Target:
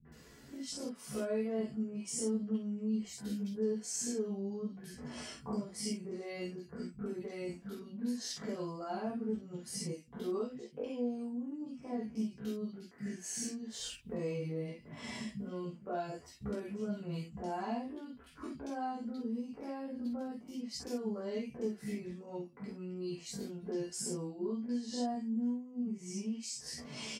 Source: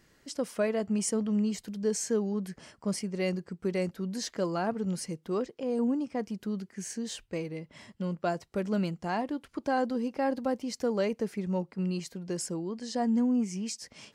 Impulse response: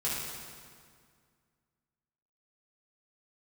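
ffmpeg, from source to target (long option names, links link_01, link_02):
-filter_complex "[0:a]equalizer=frequency=260:width=3.1:gain=10,alimiter=limit=-24dB:level=0:latency=1:release=38,acompressor=threshold=-41dB:ratio=12,atempo=0.52,acrossover=split=200|1800[link_01][link_02][link_03];[link_02]adelay=50[link_04];[link_03]adelay=120[link_05];[link_01][link_04][link_05]amix=inputs=3:normalize=0[link_06];[1:a]atrim=start_sample=2205,atrim=end_sample=3087[link_07];[link_06][link_07]afir=irnorm=-1:irlink=0,volume=3.5dB"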